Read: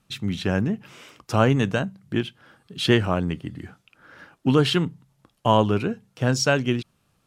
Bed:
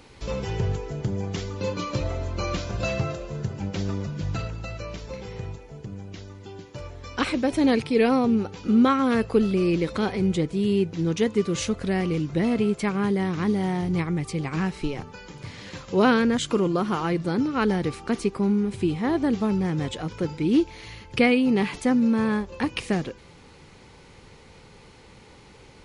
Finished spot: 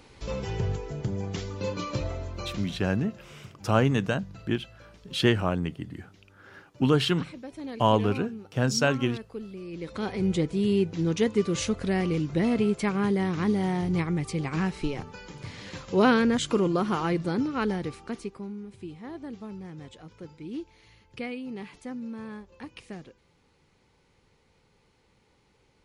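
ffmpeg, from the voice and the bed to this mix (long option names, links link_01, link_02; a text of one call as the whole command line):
ffmpeg -i stem1.wav -i stem2.wav -filter_complex "[0:a]adelay=2350,volume=-3.5dB[link_01];[1:a]volume=13dB,afade=type=out:start_time=1.96:duration=0.85:silence=0.188365,afade=type=in:start_time=9.7:duration=0.67:silence=0.158489,afade=type=out:start_time=17.1:duration=1.4:silence=0.188365[link_02];[link_01][link_02]amix=inputs=2:normalize=0" out.wav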